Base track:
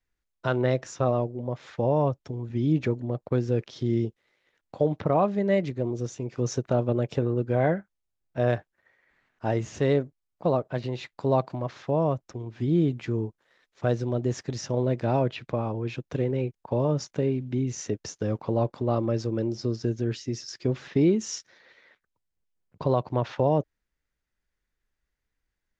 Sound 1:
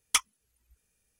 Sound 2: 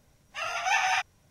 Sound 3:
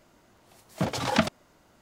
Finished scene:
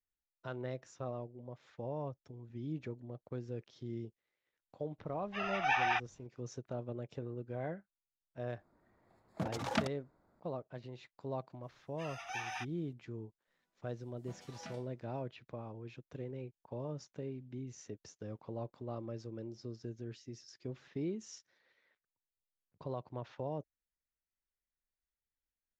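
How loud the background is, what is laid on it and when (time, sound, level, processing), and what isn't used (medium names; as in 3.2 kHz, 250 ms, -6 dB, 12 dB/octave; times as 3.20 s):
base track -17 dB
4.98 s: add 2 -3.5 dB, fades 0.02 s + distance through air 260 m
8.59 s: add 3 -10 dB + local Wiener filter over 15 samples
11.63 s: add 2 -16 dB
13.47 s: add 3 -9.5 dB + chord resonator E3 minor, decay 0.37 s
not used: 1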